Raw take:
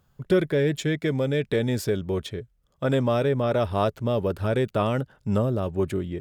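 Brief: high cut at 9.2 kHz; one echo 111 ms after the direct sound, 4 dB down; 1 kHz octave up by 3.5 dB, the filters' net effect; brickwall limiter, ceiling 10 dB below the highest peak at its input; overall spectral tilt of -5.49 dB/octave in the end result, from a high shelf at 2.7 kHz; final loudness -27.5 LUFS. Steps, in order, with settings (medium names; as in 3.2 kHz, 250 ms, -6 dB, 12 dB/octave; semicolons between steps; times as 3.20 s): low-pass 9.2 kHz; peaking EQ 1 kHz +3.5 dB; treble shelf 2.7 kHz +8 dB; peak limiter -17.5 dBFS; delay 111 ms -4 dB; trim -1.5 dB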